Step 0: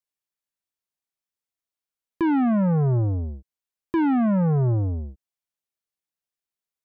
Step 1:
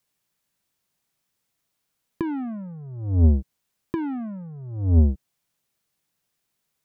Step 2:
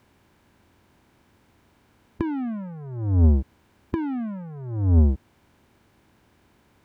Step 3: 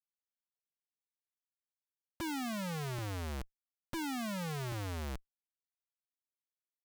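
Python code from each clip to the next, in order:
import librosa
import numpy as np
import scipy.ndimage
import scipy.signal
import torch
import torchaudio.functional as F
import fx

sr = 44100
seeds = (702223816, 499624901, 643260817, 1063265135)

y1 = fx.peak_eq(x, sr, hz=150.0, db=8.0, octaves=1.3)
y1 = fx.over_compress(y1, sr, threshold_db=-25.0, ratio=-0.5)
y1 = F.gain(torch.from_numpy(y1), 3.5).numpy()
y2 = fx.bin_compress(y1, sr, power=0.6)
y2 = F.gain(torch.from_numpy(y2), -1.0).numpy()
y3 = fx.highpass(y2, sr, hz=340.0, slope=6)
y3 = fx.schmitt(y3, sr, flips_db=-41.5)
y3 = fx.low_shelf(y3, sr, hz=490.0, db=-5.0)
y3 = F.gain(torch.from_numpy(y3), 1.0).numpy()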